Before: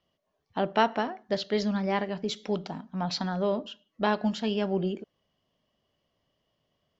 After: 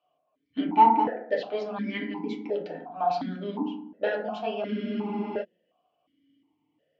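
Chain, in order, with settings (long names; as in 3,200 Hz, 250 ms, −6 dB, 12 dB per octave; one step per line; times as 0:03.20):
feedback delay network reverb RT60 0.68 s, low-frequency decay 1.5×, high-frequency decay 0.3×, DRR −3 dB
frozen spectrum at 0:04.64, 0.78 s
formant filter that steps through the vowels 2.8 Hz
level +8.5 dB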